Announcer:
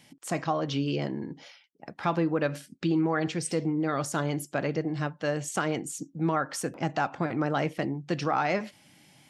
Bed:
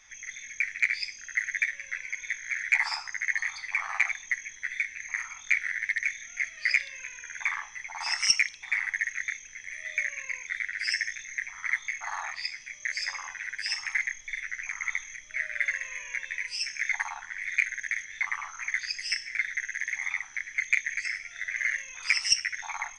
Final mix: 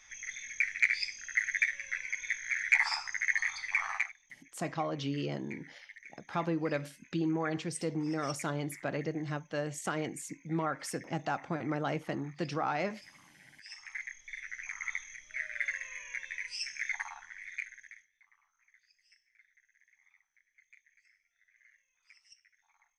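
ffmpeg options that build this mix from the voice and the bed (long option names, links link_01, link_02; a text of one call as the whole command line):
ffmpeg -i stem1.wav -i stem2.wav -filter_complex "[0:a]adelay=4300,volume=-6dB[link_01];[1:a]volume=15.5dB,afade=type=out:start_time=3.88:duration=0.24:silence=0.0841395,afade=type=in:start_time=13.54:duration=1.15:silence=0.141254,afade=type=out:start_time=16.81:duration=1.3:silence=0.0316228[link_02];[link_01][link_02]amix=inputs=2:normalize=0" out.wav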